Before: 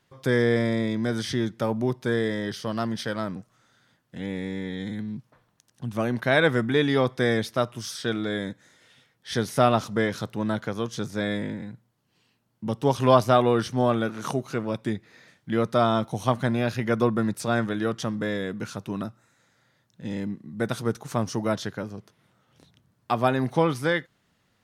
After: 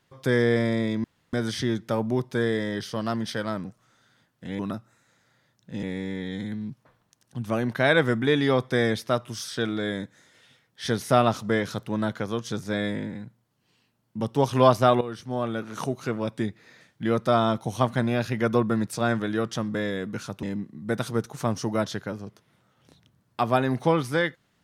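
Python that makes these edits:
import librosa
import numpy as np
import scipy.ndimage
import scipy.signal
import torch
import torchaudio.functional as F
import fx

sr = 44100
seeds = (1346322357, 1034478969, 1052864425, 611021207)

y = fx.edit(x, sr, fx.insert_room_tone(at_s=1.04, length_s=0.29),
    fx.fade_in_from(start_s=13.48, length_s=1.04, floor_db=-14.0),
    fx.move(start_s=18.9, length_s=1.24, to_s=4.3), tone=tone)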